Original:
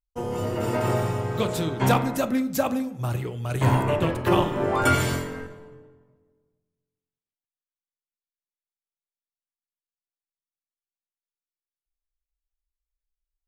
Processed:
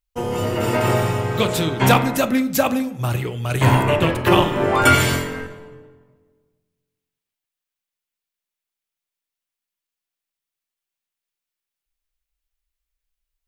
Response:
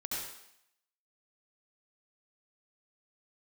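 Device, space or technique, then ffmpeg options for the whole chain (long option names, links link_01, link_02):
presence and air boost: -af "equalizer=frequency=2600:width_type=o:width=1.5:gain=5.5,highshelf=frequency=9300:gain=5,volume=5dB"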